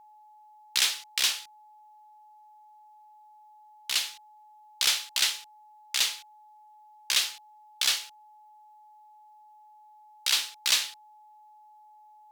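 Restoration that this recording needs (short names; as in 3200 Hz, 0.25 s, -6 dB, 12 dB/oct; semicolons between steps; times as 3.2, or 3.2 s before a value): notch 850 Hz, Q 30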